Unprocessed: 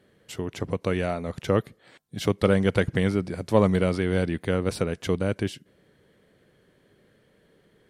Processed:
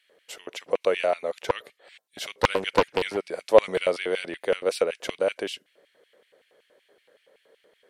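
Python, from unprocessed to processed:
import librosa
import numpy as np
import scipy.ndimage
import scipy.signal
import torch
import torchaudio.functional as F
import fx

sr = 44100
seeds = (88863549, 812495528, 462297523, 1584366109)

y = fx.filter_lfo_highpass(x, sr, shape='square', hz=5.3, low_hz=530.0, high_hz=2500.0, q=2.5)
y = fx.doppler_dist(y, sr, depth_ms=1.0, at=(1.39, 3.17))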